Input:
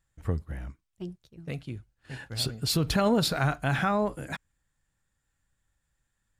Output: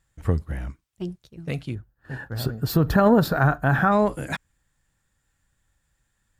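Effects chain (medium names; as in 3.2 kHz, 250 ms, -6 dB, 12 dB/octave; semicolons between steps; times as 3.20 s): Chebyshev shaper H 3 -26 dB, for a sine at -12 dBFS; time-frequency box 1.75–3.92 s, 1.9–12 kHz -13 dB; trim +8 dB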